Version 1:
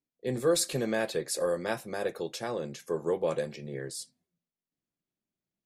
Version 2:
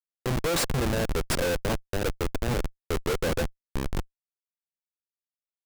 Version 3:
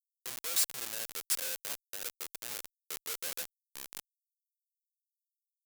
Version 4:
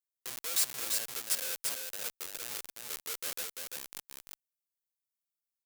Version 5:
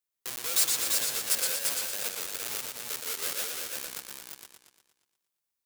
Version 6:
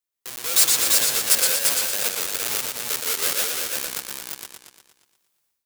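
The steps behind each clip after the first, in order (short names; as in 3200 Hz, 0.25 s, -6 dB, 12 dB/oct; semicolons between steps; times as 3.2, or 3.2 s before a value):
Schmitt trigger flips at -29.5 dBFS; gain +8 dB
differentiator
echo 0.342 s -4 dB
warbling echo 0.117 s, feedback 55%, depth 128 cents, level -3.5 dB; gain +4 dB
AGC gain up to 13.5 dB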